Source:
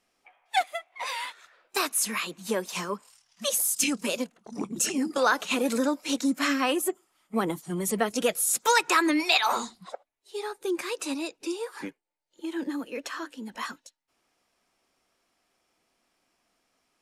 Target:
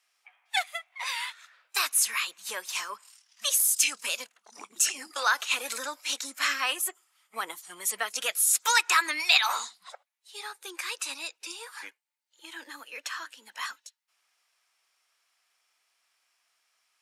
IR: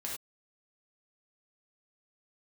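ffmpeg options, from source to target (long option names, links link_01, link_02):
-af "highpass=1300,volume=2.5dB"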